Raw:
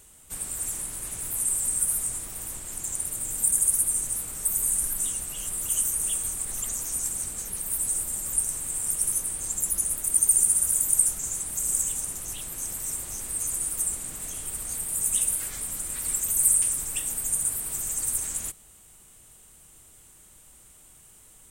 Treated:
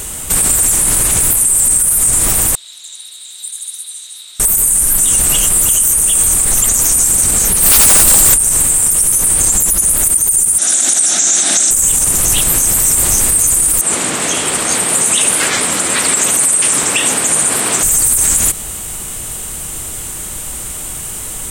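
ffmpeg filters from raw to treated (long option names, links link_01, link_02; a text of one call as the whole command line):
ffmpeg -i in.wav -filter_complex "[0:a]asettb=1/sr,asplit=3[link_01][link_02][link_03];[link_01]atrim=end=2.554[link_04];[link_02]atrim=start=2.55:end=4.4,asetpts=PTS-STARTPTS,afade=type=in:duration=0.004:curve=qsin,afade=type=out:start_time=1.846:duration=0.004:curve=qsin,bandpass=frequency=3800:width_type=q:width=18[link_05];[link_03]atrim=start=4.396[link_06];[link_04][link_05]acrossfade=duration=0.004:curve1=hsin:curve2=qsin[link_07];[link_07][link_06]acrossfade=duration=0.004:curve1=qsin:curve2=hsin,asplit=3[link_08][link_09][link_10];[link_08]afade=type=out:start_time=7.6:duration=0.02[link_11];[link_09]aeval=exprs='0.0398*(abs(mod(val(0)/0.0398+3,4)-2)-1)':channel_layout=same,afade=type=in:start_time=7.6:duration=0.02,afade=type=out:start_time=8.33:duration=0.02[link_12];[link_10]afade=type=in:start_time=8.33:duration=0.02[link_13];[link_11][link_12][link_13]amix=inputs=3:normalize=0,asettb=1/sr,asplit=3[link_14][link_15][link_16];[link_14]atrim=end=10.584[link_17];[link_15]atrim=start=10.58:end=11.71,asetpts=PTS-STARTPTS,afade=type=in:duration=0.004:curve=qsin,afade=type=out:start_time=1.126:duration=0.004:curve=qsin,highpass=frequency=240:width=0.5412,highpass=frequency=240:width=1.3066,equalizer=frequency=460:width_type=q:width=4:gain=-10,equalizer=frequency=710:width_type=q:width=4:gain=5,equalizer=frequency=1000:width_type=q:width=4:gain=-9,equalizer=frequency=1600:width_type=q:width=4:gain=4,equalizer=frequency=3700:width_type=q:width=4:gain=10,equalizer=frequency=5800:width_type=q:width=4:gain=8,lowpass=frequency=7300:width=0.5412,lowpass=frequency=7300:width=1.3066[link_18];[link_16]atrim=start=11.706[link_19];[link_17][link_18]acrossfade=duration=0.004:curve1=hsin:curve2=qsin[link_20];[link_20][link_19]acrossfade=duration=0.004:curve1=qsin:curve2=hsin,asettb=1/sr,asplit=3[link_21][link_22][link_23];[link_21]atrim=end=13.814[link_24];[link_22]atrim=start=13.81:end=17.83,asetpts=PTS-STARTPTS,afade=type=in:duration=0.004:curve=qsin,afade=type=out:start_time=4.016:duration=0.004:curve=qsin,highpass=240,lowpass=4800[link_25];[link_23]atrim=start=17.826[link_26];[link_24][link_25]acrossfade=duration=0.004:curve1=hsin:curve2=qsin[link_27];[link_27][link_26]acrossfade=duration=0.004:curve1=qsin:curve2=hsin,acompressor=threshold=-30dB:ratio=6,alimiter=level_in=30dB:limit=-1dB:release=50:level=0:latency=1,volume=-1dB" out.wav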